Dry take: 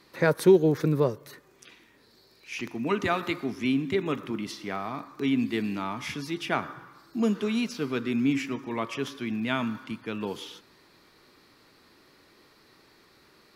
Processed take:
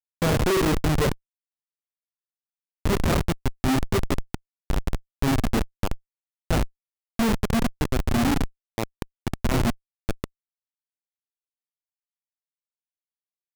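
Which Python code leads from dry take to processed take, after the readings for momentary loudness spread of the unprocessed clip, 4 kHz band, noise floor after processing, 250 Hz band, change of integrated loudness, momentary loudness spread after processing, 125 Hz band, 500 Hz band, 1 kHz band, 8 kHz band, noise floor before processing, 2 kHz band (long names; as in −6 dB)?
12 LU, +3.5 dB, below −85 dBFS, +0.5 dB, +2.0 dB, 13 LU, +7.0 dB, −1.5 dB, +3.0 dB, +9.0 dB, −60 dBFS, +1.0 dB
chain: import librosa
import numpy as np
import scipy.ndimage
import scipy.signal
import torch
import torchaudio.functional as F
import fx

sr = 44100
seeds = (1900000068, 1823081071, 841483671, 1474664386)

y = fx.rev_double_slope(x, sr, seeds[0], early_s=0.63, late_s=2.2, knee_db=-26, drr_db=2.0)
y = fx.schmitt(y, sr, flips_db=-21.0)
y = y * 10.0 ** (7.0 / 20.0)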